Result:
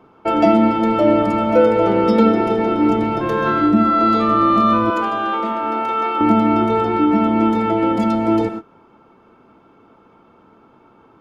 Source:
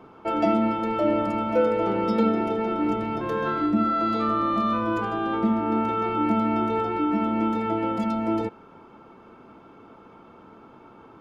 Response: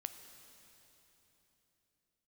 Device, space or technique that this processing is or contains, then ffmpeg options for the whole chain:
keyed gated reverb: -filter_complex "[0:a]asettb=1/sr,asplit=3[link_01][link_02][link_03];[link_01]atrim=end=4.904[link_04];[link_02]atrim=start=4.9:end=6.21,asetpts=PTS-STARTPTS,afade=type=in:duration=0.004:curve=qsin,afade=type=out:start_time=1.306:duration=0.004:curve=qsin,highpass=540[link_05];[link_03]atrim=start=6.206[link_06];[link_04][link_05]acrossfade=duration=0.004:curve1=hsin:curve2=qsin[link_07];[link_07][link_06]acrossfade=duration=0.004:curve1=qsin:curve2=hsin,asplit=3[link_08][link_09][link_10];[1:a]atrim=start_sample=2205[link_11];[link_09][link_11]afir=irnorm=-1:irlink=0[link_12];[link_10]apad=whole_len=494170[link_13];[link_12][link_13]sidechaingate=range=-33dB:threshold=-39dB:ratio=16:detection=peak,volume=10.5dB[link_14];[link_08][link_14]amix=inputs=2:normalize=0,volume=-2dB"

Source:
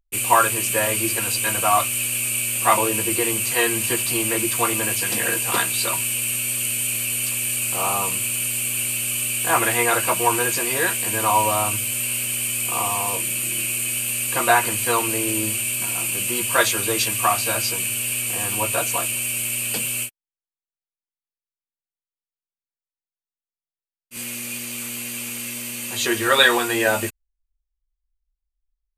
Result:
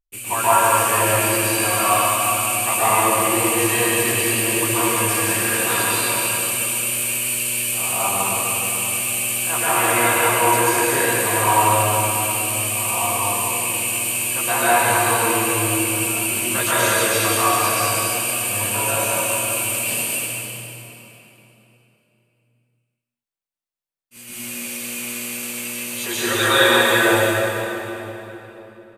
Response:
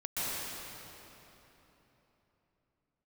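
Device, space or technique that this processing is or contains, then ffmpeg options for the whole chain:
cave: -filter_complex "[0:a]aecho=1:1:198:0.376[link_01];[1:a]atrim=start_sample=2205[link_02];[link_01][link_02]afir=irnorm=-1:irlink=0,volume=-4.5dB"

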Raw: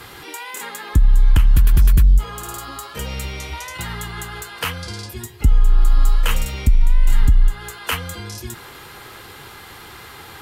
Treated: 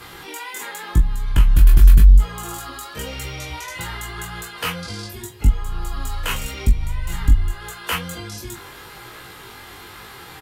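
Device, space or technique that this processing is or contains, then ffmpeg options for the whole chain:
double-tracked vocal: -filter_complex "[0:a]asplit=2[link_01][link_02];[link_02]adelay=23,volume=-6dB[link_03];[link_01][link_03]amix=inputs=2:normalize=0,flanger=delay=16.5:depth=3.7:speed=0.87,volume=1.5dB"

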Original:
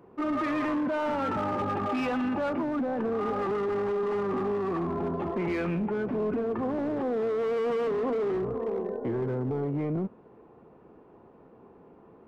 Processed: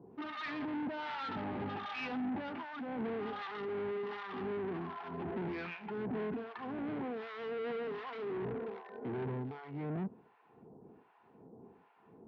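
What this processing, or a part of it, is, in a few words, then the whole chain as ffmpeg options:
guitar amplifier with harmonic tremolo: -filter_complex "[0:a]acrossover=split=870[link_01][link_02];[link_01]aeval=exprs='val(0)*(1-1/2+1/2*cos(2*PI*1.3*n/s))':channel_layout=same[link_03];[link_02]aeval=exprs='val(0)*(1-1/2-1/2*cos(2*PI*1.3*n/s))':channel_layout=same[link_04];[link_03][link_04]amix=inputs=2:normalize=0,asoftclip=type=tanh:threshold=-35.5dB,highpass=99,equalizer=frequency=330:width_type=q:width=4:gain=-4,equalizer=frequency=560:width_type=q:width=4:gain=-10,equalizer=frequency=1200:width_type=q:width=4:gain=-7,lowpass=frequency=4300:width=0.5412,lowpass=frequency=4300:width=1.3066,volume=2.5dB"

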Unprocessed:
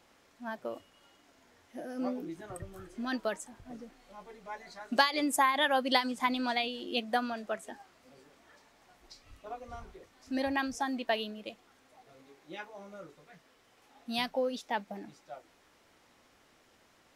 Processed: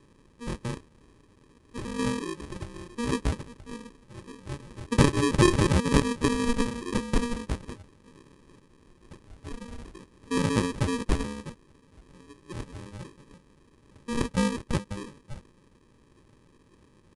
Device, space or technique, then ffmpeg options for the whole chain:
crushed at another speed: -af "asetrate=88200,aresample=44100,acrusher=samples=31:mix=1:aa=0.000001,asetrate=22050,aresample=44100,volume=6dB"

